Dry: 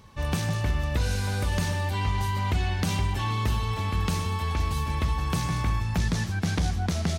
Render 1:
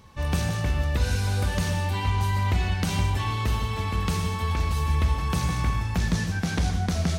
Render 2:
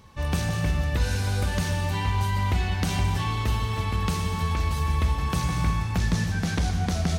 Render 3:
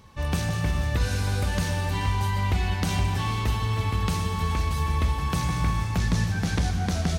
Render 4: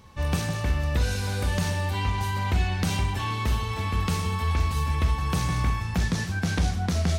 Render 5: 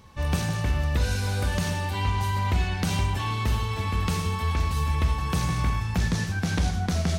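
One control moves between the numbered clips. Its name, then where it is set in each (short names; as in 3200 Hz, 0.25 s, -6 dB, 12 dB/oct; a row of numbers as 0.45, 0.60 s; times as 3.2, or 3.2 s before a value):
non-linear reverb, gate: 200, 350, 530, 90, 130 ms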